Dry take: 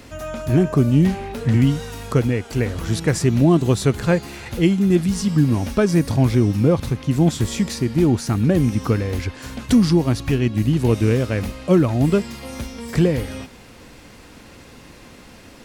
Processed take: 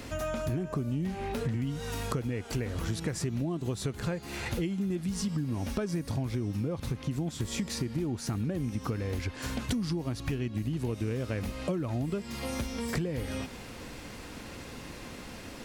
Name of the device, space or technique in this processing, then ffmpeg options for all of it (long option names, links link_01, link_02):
serial compression, leveller first: -af "acompressor=threshold=-19dB:ratio=2,acompressor=threshold=-30dB:ratio=5"